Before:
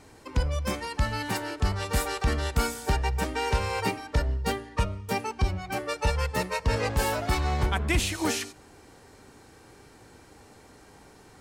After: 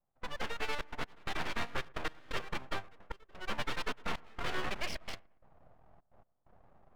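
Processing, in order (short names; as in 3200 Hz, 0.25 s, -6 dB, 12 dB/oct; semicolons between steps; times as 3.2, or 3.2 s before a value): elliptic low-pass 2800 Hz, stop band 70 dB; notch 550 Hz, Q 12; low-pass opened by the level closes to 410 Hz, open at -24 dBFS; HPF 230 Hz 24 dB/oct; limiter -23.5 dBFS, peak gain reduction 7.5 dB; transient shaper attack +1 dB, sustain -8 dB; time stretch by phase-locked vocoder 0.61×; full-wave rectifier; step gate "..xxxxx.x" 130 bpm -24 dB; on a send: dark delay 0.116 s, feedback 47%, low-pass 1500 Hz, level -23 dB; on the sum: mismatched tape noise reduction decoder only; gain +1 dB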